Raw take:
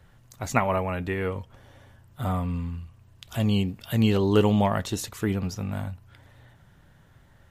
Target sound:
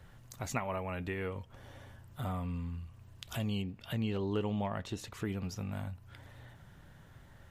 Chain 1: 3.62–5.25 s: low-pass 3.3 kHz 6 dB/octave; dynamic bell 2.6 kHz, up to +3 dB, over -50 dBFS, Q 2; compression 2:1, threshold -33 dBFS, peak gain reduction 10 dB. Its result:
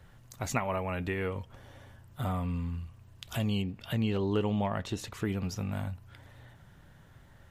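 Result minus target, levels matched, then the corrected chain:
compression: peak gain reduction -4.5 dB
3.62–5.25 s: low-pass 3.3 kHz 6 dB/octave; dynamic bell 2.6 kHz, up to +3 dB, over -50 dBFS, Q 2; compression 2:1, threshold -42 dBFS, peak gain reduction 14.5 dB

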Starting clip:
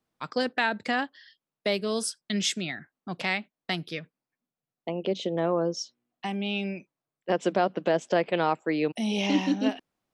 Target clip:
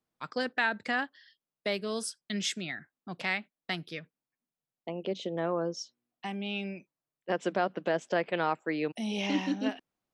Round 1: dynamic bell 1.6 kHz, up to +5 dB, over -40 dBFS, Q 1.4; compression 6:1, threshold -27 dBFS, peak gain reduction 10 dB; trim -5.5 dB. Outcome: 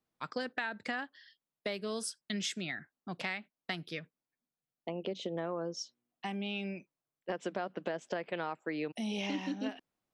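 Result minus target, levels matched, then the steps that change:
compression: peak gain reduction +10 dB
remove: compression 6:1, threshold -27 dBFS, peak gain reduction 10 dB

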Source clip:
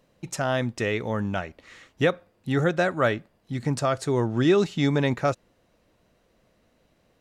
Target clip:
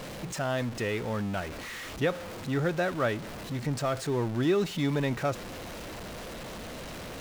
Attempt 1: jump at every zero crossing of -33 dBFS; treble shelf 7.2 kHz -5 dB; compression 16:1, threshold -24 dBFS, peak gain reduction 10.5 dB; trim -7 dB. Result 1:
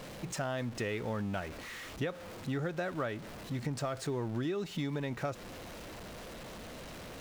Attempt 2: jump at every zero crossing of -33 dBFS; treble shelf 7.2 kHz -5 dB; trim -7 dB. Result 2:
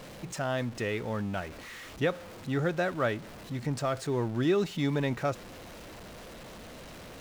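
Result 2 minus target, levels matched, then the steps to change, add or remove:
jump at every zero crossing: distortion -5 dB
change: jump at every zero crossing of -27 dBFS

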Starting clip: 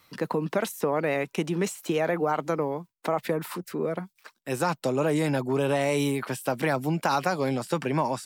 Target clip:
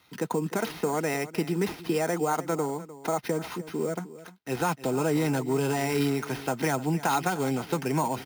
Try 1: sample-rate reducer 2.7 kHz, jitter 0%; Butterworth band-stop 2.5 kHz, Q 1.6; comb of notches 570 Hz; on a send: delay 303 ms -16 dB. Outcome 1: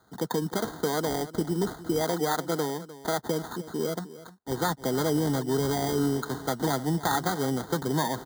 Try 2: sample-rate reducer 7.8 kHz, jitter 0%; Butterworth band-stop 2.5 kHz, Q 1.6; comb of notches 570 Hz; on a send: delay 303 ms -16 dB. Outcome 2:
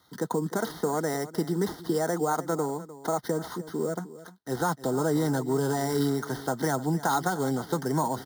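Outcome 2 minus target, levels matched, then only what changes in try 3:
2 kHz band -2.5 dB
remove: Butterworth band-stop 2.5 kHz, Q 1.6

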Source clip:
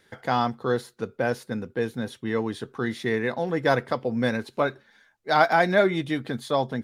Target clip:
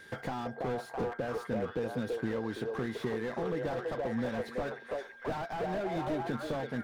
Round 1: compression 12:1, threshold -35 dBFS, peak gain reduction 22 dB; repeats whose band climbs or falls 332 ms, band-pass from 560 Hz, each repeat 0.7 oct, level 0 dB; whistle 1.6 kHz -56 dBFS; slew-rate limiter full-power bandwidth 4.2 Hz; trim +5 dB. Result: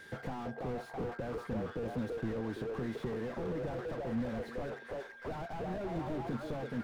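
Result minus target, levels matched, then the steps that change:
slew-rate limiter: distortion +8 dB
change: slew-rate limiter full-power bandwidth 9.5 Hz

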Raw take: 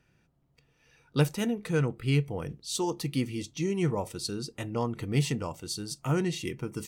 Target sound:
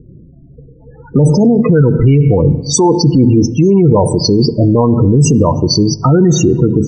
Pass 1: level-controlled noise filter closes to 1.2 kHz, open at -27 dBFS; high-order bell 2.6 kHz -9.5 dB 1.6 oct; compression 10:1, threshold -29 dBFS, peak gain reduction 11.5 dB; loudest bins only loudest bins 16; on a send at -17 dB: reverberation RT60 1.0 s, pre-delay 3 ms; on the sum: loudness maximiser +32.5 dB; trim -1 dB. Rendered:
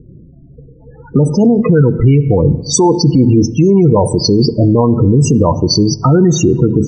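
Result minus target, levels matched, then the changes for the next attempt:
compression: peak gain reduction +11.5 dB
remove: compression 10:1, threshold -29 dBFS, peak gain reduction 11.5 dB

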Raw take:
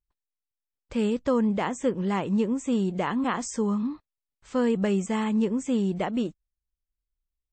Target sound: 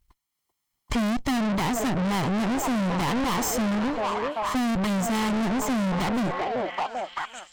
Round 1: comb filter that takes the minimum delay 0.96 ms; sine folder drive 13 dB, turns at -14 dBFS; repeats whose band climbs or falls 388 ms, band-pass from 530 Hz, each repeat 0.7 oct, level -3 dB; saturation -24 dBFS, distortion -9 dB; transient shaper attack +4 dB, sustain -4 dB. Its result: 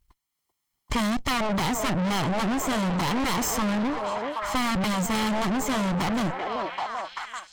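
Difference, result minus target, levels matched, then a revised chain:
sine folder: distortion +20 dB
comb filter that takes the minimum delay 0.96 ms; sine folder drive 13 dB, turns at -5 dBFS; repeats whose band climbs or falls 388 ms, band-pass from 530 Hz, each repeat 0.7 oct, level -3 dB; saturation -24 dBFS, distortion -5 dB; transient shaper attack +4 dB, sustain -4 dB

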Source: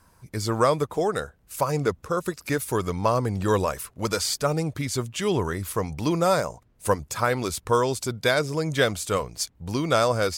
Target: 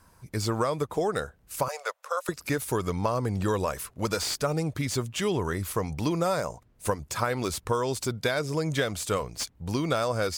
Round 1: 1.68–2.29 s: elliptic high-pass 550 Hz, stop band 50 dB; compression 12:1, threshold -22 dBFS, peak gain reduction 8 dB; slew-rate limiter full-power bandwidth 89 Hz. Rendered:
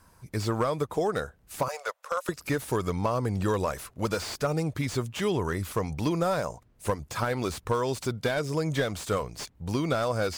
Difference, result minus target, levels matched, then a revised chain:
slew-rate limiter: distortion +7 dB
1.68–2.29 s: elliptic high-pass 550 Hz, stop band 50 dB; compression 12:1, threshold -22 dBFS, peak gain reduction 8 dB; slew-rate limiter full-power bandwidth 246.5 Hz

